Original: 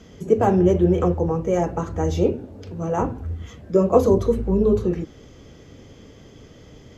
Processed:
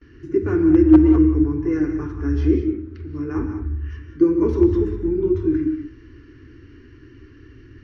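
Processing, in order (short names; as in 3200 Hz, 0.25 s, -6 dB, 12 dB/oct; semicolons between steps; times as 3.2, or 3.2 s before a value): de-hum 119.6 Hz, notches 30; varispeed -11%; EQ curve 120 Hz 0 dB, 180 Hz -20 dB, 310 Hz +7 dB, 660 Hz -28 dB, 990 Hz -10 dB, 1600 Hz +4 dB, 3200 Hz -9 dB; gate with hold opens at -45 dBFS; wavefolder -6.5 dBFS; air absorption 110 m; non-linear reverb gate 0.22 s rising, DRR 6.5 dB; gain +1.5 dB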